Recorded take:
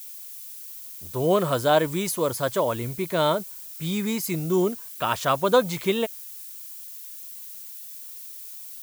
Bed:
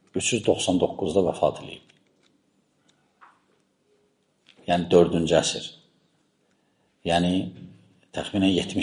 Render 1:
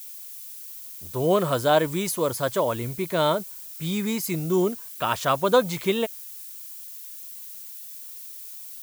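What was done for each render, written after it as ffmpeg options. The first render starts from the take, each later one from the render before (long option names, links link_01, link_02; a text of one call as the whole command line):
ffmpeg -i in.wav -af anull out.wav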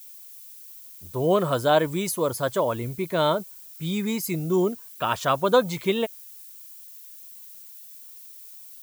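ffmpeg -i in.wav -af "afftdn=noise_reduction=6:noise_floor=-40" out.wav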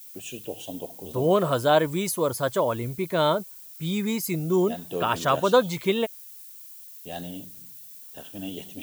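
ffmpeg -i in.wav -i bed.wav -filter_complex "[1:a]volume=-14.5dB[link_01];[0:a][link_01]amix=inputs=2:normalize=0" out.wav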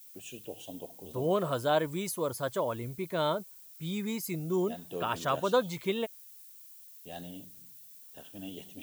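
ffmpeg -i in.wav -af "volume=-7.5dB" out.wav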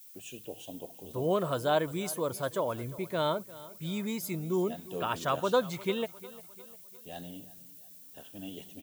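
ffmpeg -i in.wav -af "aecho=1:1:352|704|1056|1408:0.112|0.0539|0.0259|0.0124" out.wav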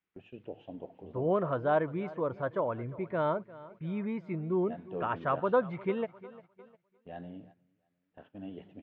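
ffmpeg -i in.wav -af "lowpass=frequency=2100:width=0.5412,lowpass=frequency=2100:width=1.3066,agate=range=-11dB:threshold=-55dB:ratio=16:detection=peak" out.wav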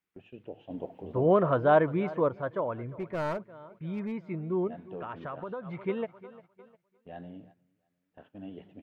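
ffmpeg -i in.wav -filter_complex "[0:a]asettb=1/sr,asplit=3[link_01][link_02][link_03];[link_01]atrim=end=0.704[link_04];[link_02]atrim=start=0.7:end=2.29,asetpts=PTS-STARTPTS,afade=type=in:duration=0.004:curve=qsin,afade=type=out:start_time=1.586:duration=0.004:curve=qsin,acontrast=49[link_05];[link_03]atrim=start=2.286[link_06];[link_04][link_05]acrossfade=duration=0.004:curve1=hsin:curve2=qsin[link_07];[link_07][link_06]acrossfade=duration=0.004:curve1=qsin:curve2=hsin,asettb=1/sr,asplit=3[link_08][link_09][link_10];[link_08]atrim=end=2.874[link_11];[link_09]atrim=start=2.87:end=4.12,asetpts=PTS-STARTPTS,afade=type=in:duration=0.004:curve=qsin,afade=type=out:start_time=1.246:duration=0.004:curve=qsin,aeval=exprs='clip(val(0),-1,0.0299)':channel_layout=same[link_12];[link_10]atrim=start=4.116[link_13];[link_11][link_12]acrossfade=duration=0.004:curve1=hsin:curve2=qsin[link_14];[link_14][link_13]acrossfade=duration=0.004:curve1=qsin:curve2=hsin,asettb=1/sr,asplit=3[link_15][link_16][link_17];[link_15]atrim=end=4.674[link_18];[link_16]atrim=start=4.67:end=5.67,asetpts=PTS-STARTPTS,afade=type=in:duration=0.004:curve=qsin,afade=type=out:start_time=0.996:duration=0.004:curve=qsin,acompressor=threshold=-34dB:ratio=6:attack=3.2:release=140:knee=1:detection=peak[link_19];[link_17]atrim=start=5.666[link_20];[link_18][link_19]acrossfade=duration=0.004:curve1=hsin:curve2=qsin[link_21];[link_21][link_20]acrossfade=duration=0.004:curve1=qsin:curve2=hsin" out.wav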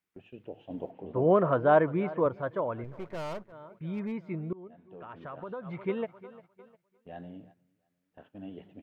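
ffmpeg -i in.wav -filter_complex "[0:a]asettb=1/sr,asplit=3[link_01][link_02][link_03];[link_01]atrim=end=0.914[link_04];[link_02]atrim=start=0.91:end=2.26,asetpts=PTS-STARTPTS,afade=type=in:duration=0.004:curve=qsin,afade=type=out:start_time=1.346:duration=0.004:curve=qsin,highpass=110,lowpass=3100[link_05];[link_03]atrim=start=2.256[link_06];[link_04][link_05]acrossfade=duration=0.004:curve1=hsin:curve2=qsin[link_07];[link_07][link_06]acrossfade=duration=0.004:curve1=qsin:curve2=hsin,asettb=1/sr,asplit=3[link_08][link_09][link_10];[link_08]atrim=end=2.844[link_11];[link_09]atrim=start=2.84:end=3.52,asetpts=PTS-STARTPTS,afade=type=in:duration=0.004:curve=qsin,afade=type=out:start_time=0.676:duration=0.004:curve=qsin,aeval=exprs='if(lt(val(0),0),0.251*val(0),val(0))':channel_layout=same[link_12];[link_10]atrim=start=3.516[link_13];[link_11][link_12]acrossfade=duration=0.004:curve1=hsin:curve2=qsin[link_14];[link_14][link_13]acrossfade=duration=0.004:curve1=qsin:curve2=hsin,asplit=2[link_15][link_16];[link_15]atrim=end=4.53,asetpts=PTS-STARTPTS,afade=type=out:start_time=4.526:duration=0.004:curve=hsin:silence=0.0630957[link_17];[link_16]atrim=start=4.53,asetpts=PTS-STARTPTS,afade=type=in:duration=1.18:silence=0.0630957[link_18];[link_17][link_18]concat=n=2:v=0:a=1" out.wav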